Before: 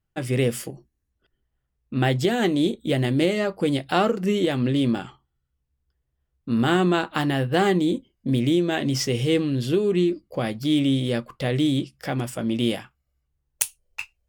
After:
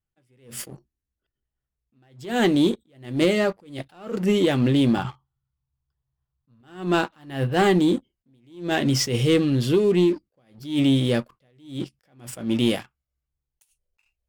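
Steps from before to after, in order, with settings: 4.97–6.61 s: graphic EQ 125/250/500/1000/2000/4000/8000 Hz +12/-4/-4/+10/-4/+3/-5 dB; waveshaping leveller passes 2; attacks held to a fixed rise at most 130 dB/s; trim -4.5 dB

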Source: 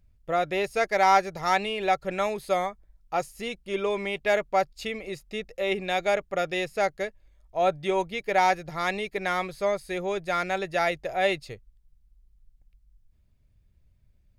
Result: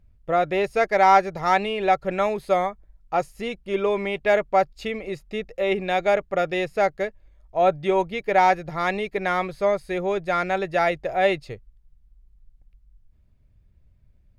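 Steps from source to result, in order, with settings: treble shelf 3.4 kHz -11 dB; trim +5 dB

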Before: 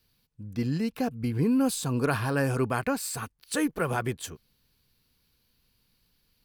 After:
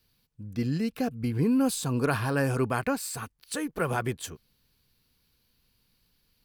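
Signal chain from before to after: 0.56–1.15 s: peaking EQ 930 Hz -7.5 dB 0.32 oct; 2.95–3.75 s: compression 2:1, threshold -33 dBFS, peak gain reduction 6 dB

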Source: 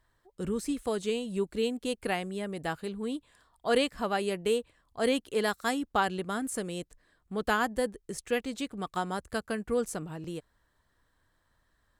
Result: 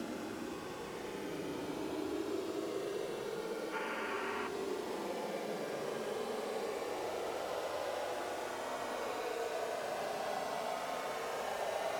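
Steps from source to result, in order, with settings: word length cut 6-bit, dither triangular; band-pass sweep 200 Hz -> 4.8 kHz, 10.24–11.76 s; Paulstretch 30×, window 0.05 s, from 10.43 s; time-frequency box 3.73–4.47 s, 850–3100 Hz +9 dB; three bands compressed up and down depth 40%; trim +14.5 dB

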